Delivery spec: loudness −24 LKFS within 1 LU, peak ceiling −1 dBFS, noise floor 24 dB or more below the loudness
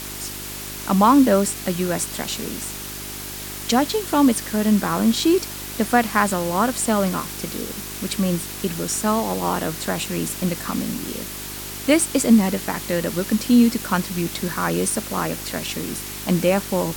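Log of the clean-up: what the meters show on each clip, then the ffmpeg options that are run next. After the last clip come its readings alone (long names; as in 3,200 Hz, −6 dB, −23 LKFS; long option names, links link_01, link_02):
mains hum 50 Hz; hum harmonics up to 400 Hz; level of the hum −37 dBFS; background noise floor −33 dBFS; target noise floor −46 dBFS; integrated loudness −21.5 LKFS; sample peak −3.0 dBFS; target loudness −24.0 LKFS
→ -af "bandreject=frequency=50:width_type=h:width=4,bandreject=frequency=100:width_type=h:width=4,bandreject=frequency=150:width_type=h:width=4,bandreject=frequency=200:width_type=h:width=4,bandreject=frequency=250:width_type=h:width=4,bandreject=frequency=300:width_type=h:width=4,bandreject=frequency=350:width_type=h:width=4,bandreject=frequency=400:width_type=h:width=4"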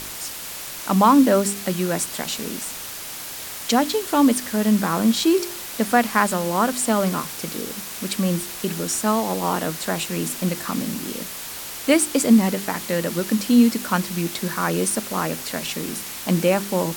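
mains hum none found; background noise floor −34 dBFS; target noise floor −46 dBFS
→ -af "afftdn=noise_reduction=12:noise_floor=-34"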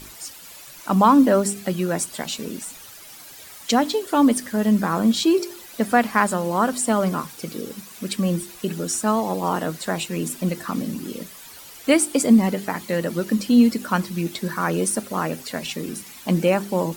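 background noise floor −42 dBFS; target noise floor −46 dBFS
→ -af "afftdn=noise_reduction=6:noise_floor=-42"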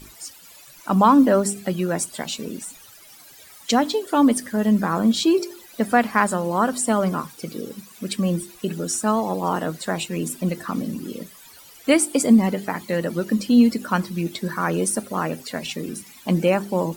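background noise floor −47 dBFS; integrated loudness −21.5 LKFS; sample peak −3.5 dBFS; target loudness −24.0 LKFS
→ -af "volume=-2.5dB"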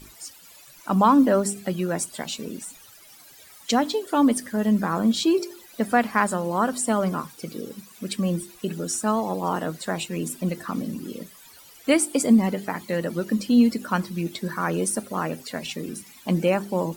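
integrated loudness −24.0 LKFS; sample peak −6.0 dBFS; background noise floor −49 dBFS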